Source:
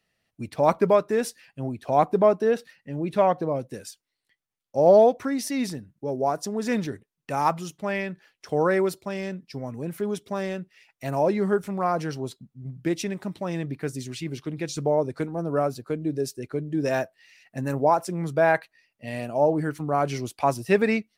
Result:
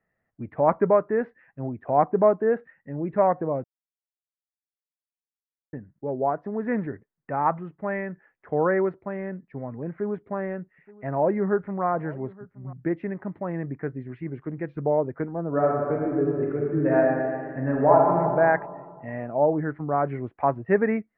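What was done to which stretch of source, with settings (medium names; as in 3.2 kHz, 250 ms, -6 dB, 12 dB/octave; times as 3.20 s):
3.64–5.73 s: mute
9.91–12.73 s: delay 873 ms -21.5 dB
15.48–18.16 s: reverb throw, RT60 2 s, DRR -2.5 dB
whole clip: elliptic low-pass 1.9 kHz, stop band 80 dB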